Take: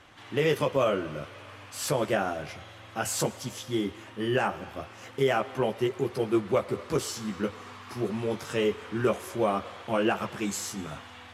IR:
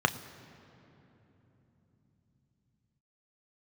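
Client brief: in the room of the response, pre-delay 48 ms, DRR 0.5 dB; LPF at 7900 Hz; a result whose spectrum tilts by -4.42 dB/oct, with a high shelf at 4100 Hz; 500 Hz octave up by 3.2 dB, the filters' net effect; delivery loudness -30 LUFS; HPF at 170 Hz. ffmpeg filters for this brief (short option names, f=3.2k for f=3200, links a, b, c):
-filter_complex "[0:a]highpass=170,lowpass=7.9k,equalizer=f=500:t=o:g=4,highshelf=f=4.1k:g=4.5,asplit=2[a][b];[1:a]atrim=start_sample=2205,adelay=48[c];[b][c]afir=irnorm=-1:irlink=0,volume=-12.5dB[d];[a][d]amix=inputs=2:normalize=0,volume=-5dB"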